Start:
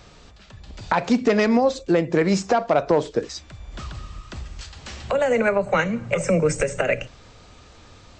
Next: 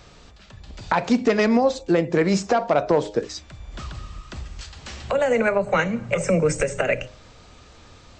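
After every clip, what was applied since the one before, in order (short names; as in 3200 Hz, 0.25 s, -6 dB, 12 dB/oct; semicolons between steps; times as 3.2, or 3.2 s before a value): de-hum 103.1 Hz, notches 9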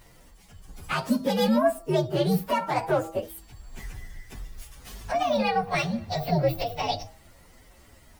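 inharmonic rescaling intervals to 129%; bit-crush 11-bit; gain -1.5 dB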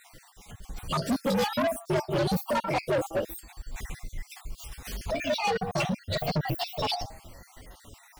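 random spectral dropouts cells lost 44%; soft clip -29 dBFS, distortion -6 dB; gain +6.5 dB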